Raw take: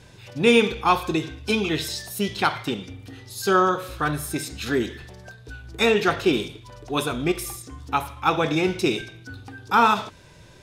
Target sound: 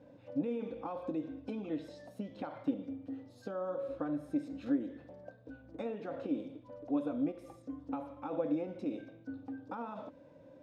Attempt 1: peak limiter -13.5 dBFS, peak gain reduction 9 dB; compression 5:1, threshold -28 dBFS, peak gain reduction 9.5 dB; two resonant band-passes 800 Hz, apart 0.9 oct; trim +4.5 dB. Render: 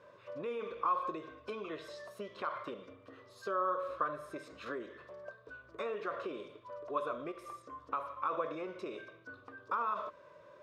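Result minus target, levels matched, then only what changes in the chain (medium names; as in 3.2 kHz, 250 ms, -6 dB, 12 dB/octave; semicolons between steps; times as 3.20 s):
1 kHz band +10.5 dB
change: two resonant band-passes 390 Hz, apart 0.9 oct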